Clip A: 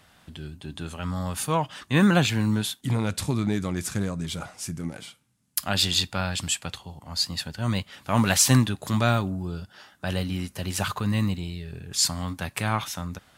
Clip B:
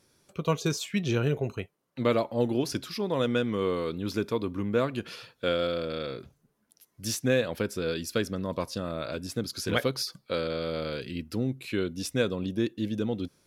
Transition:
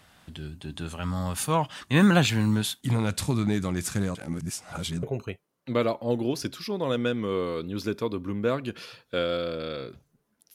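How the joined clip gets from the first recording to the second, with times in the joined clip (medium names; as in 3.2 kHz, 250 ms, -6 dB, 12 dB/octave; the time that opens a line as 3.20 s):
clip A
4.15–5.03 s: reverse
5.03 s: go over to clip B from 1.33 s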